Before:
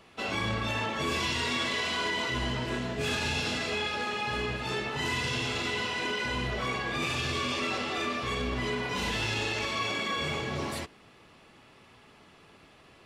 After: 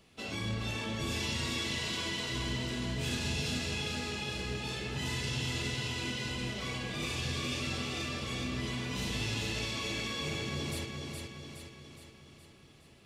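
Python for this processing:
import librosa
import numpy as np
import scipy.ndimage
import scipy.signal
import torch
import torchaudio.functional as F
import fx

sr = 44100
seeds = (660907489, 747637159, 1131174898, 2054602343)

y = fx.peak_eq(x, sr, hz=1100.0, db=-12.5, octaves=2.8)
y = fx.hum_notches(y, sr, base_hz=60, count=7)
y = fx.echo_feedback(y, sr, ms=417, feedback_pct=54, wet_db=-4.5)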